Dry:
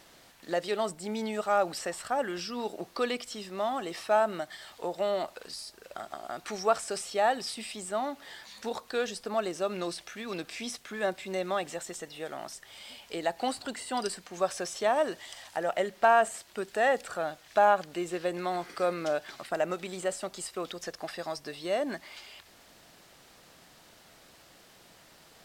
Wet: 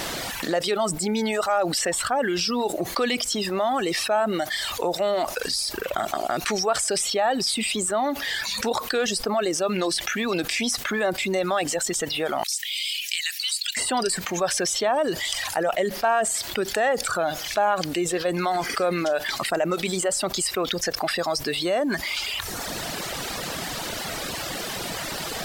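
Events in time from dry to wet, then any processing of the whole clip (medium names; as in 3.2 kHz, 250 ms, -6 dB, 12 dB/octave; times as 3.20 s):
12.43–13.77 s: steep high-pass 2.2 kHz
whole clip: reverb removal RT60 1.1 s; level flattener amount 70%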